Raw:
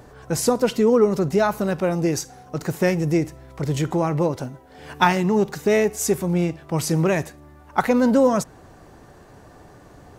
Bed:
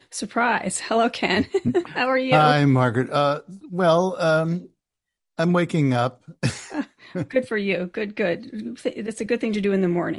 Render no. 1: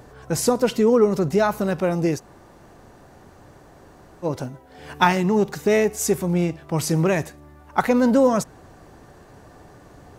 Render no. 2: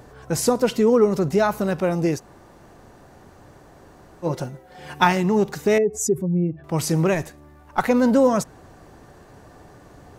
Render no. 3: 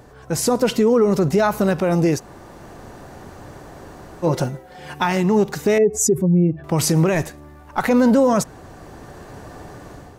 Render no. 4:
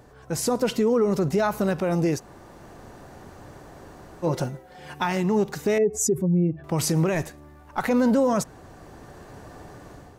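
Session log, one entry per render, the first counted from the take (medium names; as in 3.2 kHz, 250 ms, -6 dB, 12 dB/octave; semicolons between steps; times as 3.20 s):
2.17–4.25 s: room tone, crossfade 0.06 s
4.26–5.00 s: comb 5.6 ms; 5.78–6.64 s: spectral contrast enhancement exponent 1.9; 7.14–7.84 s: partial rectifier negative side -3 dB
level rider gain up to 9 dB; peak limiter -8.5 dBFS, peak gain reduction 7.5 dB
trim -5.5 dB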